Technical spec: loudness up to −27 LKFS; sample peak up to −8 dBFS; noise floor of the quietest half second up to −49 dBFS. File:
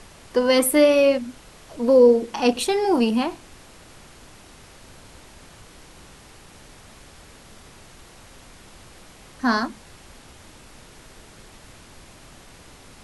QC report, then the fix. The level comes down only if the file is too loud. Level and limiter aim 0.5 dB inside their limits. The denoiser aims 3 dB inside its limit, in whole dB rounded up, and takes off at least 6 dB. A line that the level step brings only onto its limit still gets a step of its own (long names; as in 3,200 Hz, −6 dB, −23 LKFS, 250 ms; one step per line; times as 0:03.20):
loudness −19.5 LKFS: out of spec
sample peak −5.0 dBFS: out of spec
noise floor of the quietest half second −47 dBFS: out of spec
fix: level −8 dB